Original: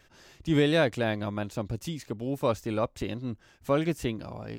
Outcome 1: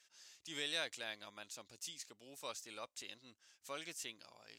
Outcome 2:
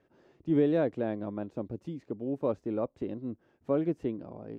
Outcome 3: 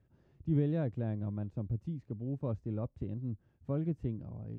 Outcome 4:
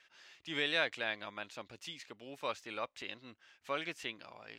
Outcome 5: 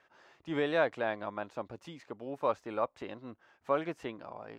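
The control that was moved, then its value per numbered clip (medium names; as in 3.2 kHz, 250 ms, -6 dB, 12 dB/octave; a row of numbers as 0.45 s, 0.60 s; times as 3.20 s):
band-pass filter, frequency: 6.9 kHz, 340 Hz, 110 Hz, 2.6 kHz, 990 Hz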